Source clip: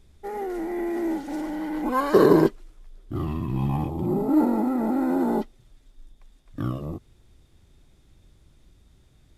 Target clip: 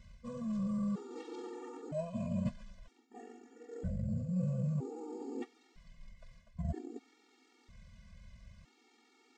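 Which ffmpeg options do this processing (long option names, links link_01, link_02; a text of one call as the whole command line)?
ffmpeg -i in.wav -af "asetrate=26222,aresample=44100,atempo=1.68179,areverse,acompressor=threshold=-37dB:ratio=10,areverse,highpass=40,afftfilt=real='re*gt(sin(2*PI*0.52*pts/sr)*(1-2*mod(floor(b*sr/1024/240),2)),0)':imag='im*gt(sin(2*PI*0.52*pts/sr)*(1-2*mod(floor(b*sr/1024/240),2)),0)':win_size=1024:overlap=0.75,volume=5.5dB" out.wav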